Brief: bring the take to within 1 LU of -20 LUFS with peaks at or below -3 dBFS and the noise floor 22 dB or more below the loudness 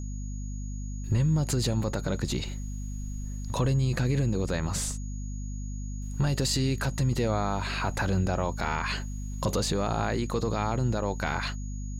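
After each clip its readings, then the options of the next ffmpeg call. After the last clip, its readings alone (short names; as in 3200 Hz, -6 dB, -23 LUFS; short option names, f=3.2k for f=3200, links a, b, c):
hum 50 Hz; harmonics up to 250 Hz; hum level -32 dBFS; steady tone 6700 Hz; tone level -49 dBFS; loudness -29.5 LUFS; peak -15.5 dBFS; loudness target -20.0 LUFS
-> -af "bandreject=f=50:t=h:w=6,bandreject=f=100:t=h:w=6,bandreject=f=150:t=h:w=6,bandreject=f=200:t=h:w=6,bandreject=f=250:t=h:w=6"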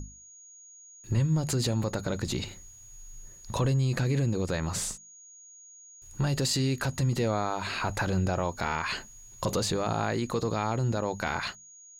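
hum none; steady tone 6700 Hz; tone level -49 dBFS
-> -af "bandreject=f=6.7k:w=30"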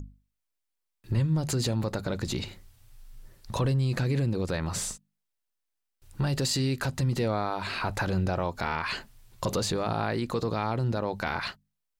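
steady tone none; loudness -29.5 LUFS; peak -16.0 dBFS; loudness target -20.0 LUFS
-> -af "volume=9.5dB"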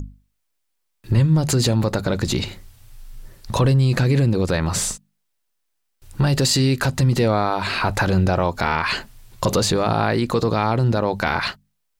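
loudness -20.0 LUFS; peak -6.5 dBFS; noise floor -73 dBFS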